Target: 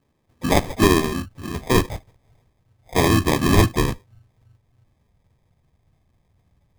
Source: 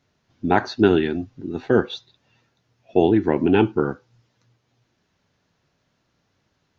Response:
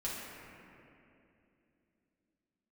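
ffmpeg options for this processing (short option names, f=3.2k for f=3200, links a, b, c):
-filter_complex "[0:a]asplit=3[a][b][c];[b]asetrate=35002,aresample=44100,atempo=1.25992,volume=-4dB[d];[c]asetrate=88200,aresample=44100,atempo=0.5,volume=-17dB[e];[a][d][e]amix=inputs=3:normalize=0,acrusher=samples=31:mix=1:aa=0.000001,asubboost=boost=5.5:cutoff=120,volume=-1dB"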